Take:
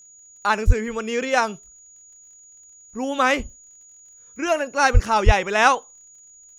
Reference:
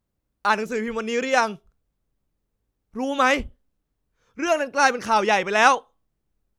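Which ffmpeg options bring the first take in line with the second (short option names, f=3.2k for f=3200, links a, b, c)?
-filter_complex "[0:a]adeclick=t=4,bandreject=f=6.8k:w=30,asplit=3[a][b][c];[a]afade=t=out:st=0.66:d=0.02[d];[b]highpass=f=140:w=0.5412,highpass=f=140:w=1.3066,afade=t=in:st=0.66:d=0.02,afade=t=out:st=0.78:d=0.02[e];[c]afade=t=in:st=0.78:d=0.02[f];[d][e][f]amix=inputs=3:normalize=0,asplit=3[g][h][i];[g]afade=t=out:st=4.93:d=0.02[j];[h]highpass=f=140:w=0.5412,highpass=f=140:w=1.3066,afade=t=in:st=4.93:d=0.02,afade=t=out:st=5.05:d=0.02[k];[i]afade=t=in:st=5.05:d=0.02[l];[j][k][l]amix=inputs=3:normalize=0,asplit=3[m][n][o];[m]afade=t=out:st=5.25:d=0.02[p];[n]highpass=f=140:w=0.5412,highpass=f=140:w=1.3066,afade=t=in:st=5.25:d=0.02,afade=t=out:st=5.37:d=0.02[q];[o]afade=t=in:st=5.37:d=0.02[r];[p][q][r]amix=inputs=3:normalize=0"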